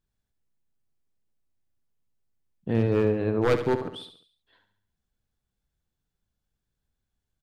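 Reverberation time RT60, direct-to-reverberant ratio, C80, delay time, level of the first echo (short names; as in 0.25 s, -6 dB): none, none, none, 70 ms, -10.0 dB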